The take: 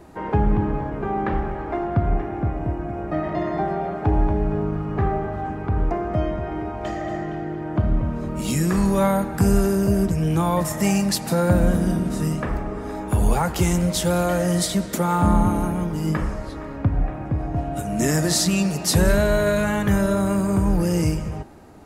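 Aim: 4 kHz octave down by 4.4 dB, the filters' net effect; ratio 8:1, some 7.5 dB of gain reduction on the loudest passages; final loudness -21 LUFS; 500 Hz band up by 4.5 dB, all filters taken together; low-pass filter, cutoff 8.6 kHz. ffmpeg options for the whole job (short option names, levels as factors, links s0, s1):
-af "lowpass=8600,equalizer=f=500:t=o:g=6,equalizer=f=4000:t=o:g=-5.5,acompressor=threshold=0.112:ratio=8,volume=1.58"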